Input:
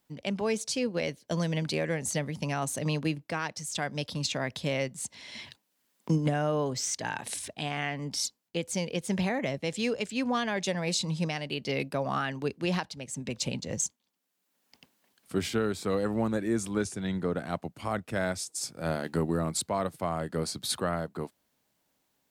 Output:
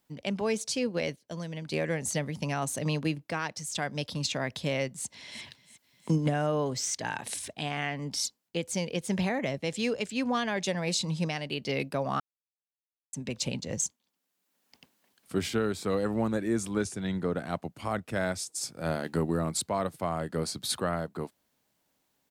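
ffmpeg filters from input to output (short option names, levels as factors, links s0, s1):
-filter_complex "[0:a]asplit=2[s0][s1];[s1]afade=t=in:st=4.88:d=0.01,afade=t=out:st=5.42:d=0.01,aecho=0:1:350|700|1050|1400|1750|2100|2450|2800:0.133352|0.0933465|0.0653426|0.0457398|0.0320178|0.0224125|0.0156887|0.0109821[s2];[s0][s2]amix=inputs=2:normalize=0,asplit=5[s3][s4][s5][s6][s7];[s3]atrim=end=1.162[s8];[s4]atrim=start=1.158:end=1.722,asetpts=PTS-STARTPTS,volume=0.398[s9];[s5]atrim=start=1.718:end=12.2,asetpts=PTS-STARTPTS,afade=t=out:st=10.478:d=0.004:c=hsin[s10];[s6]atrim=start=12.2:end=13.13,asetpts=PTS-STARTPTS,volume=0[s11];[s7]atrim=start=13.13,asetpts=PTS-STARTPTS,afade=t=in:d=0.004:c=hsin[s12];[s8][s9]acrossfade=d=0.004:c1=hsin:c2=hsin[s13];[s10][s11][s12]concat=n=3:v=0:a=1[s14];[s13][s14]acrossfade=d=0.004:c1=hsin:c2=hsin"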